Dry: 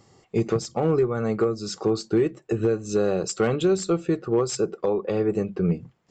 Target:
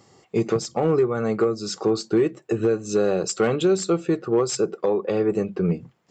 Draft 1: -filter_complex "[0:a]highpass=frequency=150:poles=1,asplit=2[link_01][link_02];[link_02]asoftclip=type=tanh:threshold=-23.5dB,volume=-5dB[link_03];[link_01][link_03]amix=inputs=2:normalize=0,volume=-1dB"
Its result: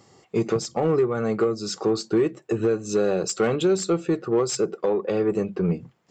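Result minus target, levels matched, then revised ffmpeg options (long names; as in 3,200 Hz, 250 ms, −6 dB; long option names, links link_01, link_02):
soft clipping: distortion +11 dB
-filter_complex "[0:a]highpass=frequency=150:poles=1,asplit=2[link_01][link_02];[link_02]asoftclip=type=tanh:threshold=-15dB,volume=-5dB[link_03];[link_01][link_03]amix=inputs=2:normalize=0,volume=-1dB"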